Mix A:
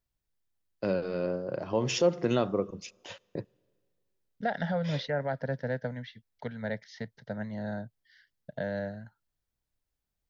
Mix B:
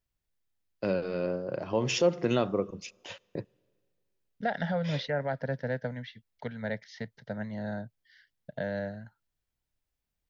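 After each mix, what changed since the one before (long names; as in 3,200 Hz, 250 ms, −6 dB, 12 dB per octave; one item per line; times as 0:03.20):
master: add parametric band 2,500 Hz +3 dB 0.68 octaves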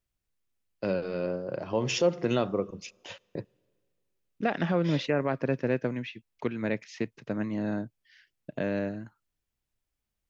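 second voice: remove phaser with its sweep stopped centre 1,700 Hz, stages 8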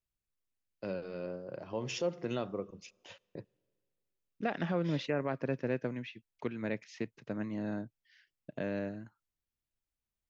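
first voice −9.0 dB
second voice −6.0 dB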